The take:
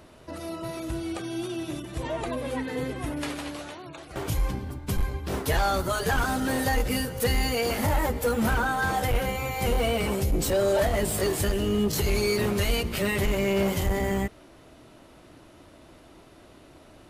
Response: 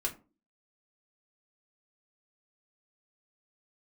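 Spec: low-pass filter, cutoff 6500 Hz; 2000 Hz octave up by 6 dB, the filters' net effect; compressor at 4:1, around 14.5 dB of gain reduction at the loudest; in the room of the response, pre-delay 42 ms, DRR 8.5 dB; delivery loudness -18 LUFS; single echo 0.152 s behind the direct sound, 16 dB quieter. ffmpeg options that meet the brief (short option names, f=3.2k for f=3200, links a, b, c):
-filter_complex "[0:a]lowpass=6.5k,equalizer=f=2k:t=o:g=7.5,acompressor=threshold=-38dB:ratio=4,aecho=1:1:152:0.158,asplit=2[a][b];[1:a]atrim=start_sample=2205,adelay=42[c];[b][c]afir=irnorm=-1:irlink=0,volume=-12dB[d];[a][d]amix=inputs=2:normalize=0,volume=20dB"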